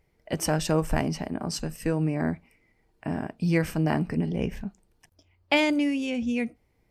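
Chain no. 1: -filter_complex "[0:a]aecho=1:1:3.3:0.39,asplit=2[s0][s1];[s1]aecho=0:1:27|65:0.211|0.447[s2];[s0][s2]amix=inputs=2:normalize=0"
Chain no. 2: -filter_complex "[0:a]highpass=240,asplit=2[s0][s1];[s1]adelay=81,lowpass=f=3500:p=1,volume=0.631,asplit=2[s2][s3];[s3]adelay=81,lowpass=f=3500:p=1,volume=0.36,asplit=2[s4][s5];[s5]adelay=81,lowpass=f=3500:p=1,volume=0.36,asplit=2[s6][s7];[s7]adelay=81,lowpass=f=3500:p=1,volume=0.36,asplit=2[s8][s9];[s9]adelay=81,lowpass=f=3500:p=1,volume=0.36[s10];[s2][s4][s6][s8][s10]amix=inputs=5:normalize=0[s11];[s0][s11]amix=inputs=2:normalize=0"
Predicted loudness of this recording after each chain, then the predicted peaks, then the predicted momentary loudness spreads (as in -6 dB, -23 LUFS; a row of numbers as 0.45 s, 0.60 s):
-26.0 LUFS, -28.0 LUFS; -8.5 dBFS, -8.0 dBFS; 12 LU, 13 LU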